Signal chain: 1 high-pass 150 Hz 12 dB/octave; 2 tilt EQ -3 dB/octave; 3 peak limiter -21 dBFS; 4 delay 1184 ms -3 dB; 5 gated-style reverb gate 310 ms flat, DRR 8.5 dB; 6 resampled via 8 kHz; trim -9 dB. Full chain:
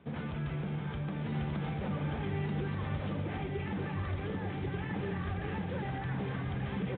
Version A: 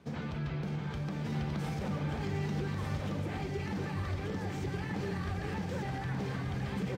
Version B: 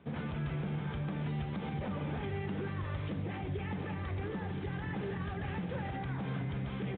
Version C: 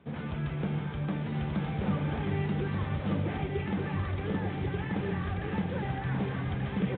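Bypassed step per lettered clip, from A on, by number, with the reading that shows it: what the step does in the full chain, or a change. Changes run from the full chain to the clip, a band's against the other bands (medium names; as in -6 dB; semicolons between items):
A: 6, 4 kHz band +2.0 dB; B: 4, loudness change -1.5 LU; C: 3, mean gain reduction 3.0 dB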